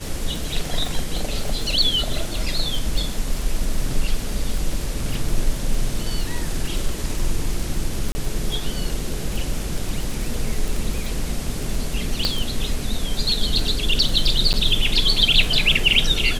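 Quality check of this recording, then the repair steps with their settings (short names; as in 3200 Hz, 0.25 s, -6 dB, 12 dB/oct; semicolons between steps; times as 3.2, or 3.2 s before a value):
crackle 27/s -23 dBFS
8.12–8.15 gap 30 ms
12.25 pop -7 dBFS
14.53–14.54 gap 8.5 ms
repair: de-click; interpolate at 8.12, 30 ms; interpolate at 14.53, 8.5 ms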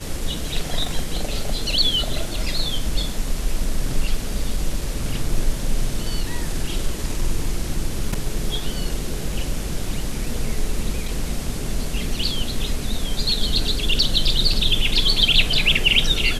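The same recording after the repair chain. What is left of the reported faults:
none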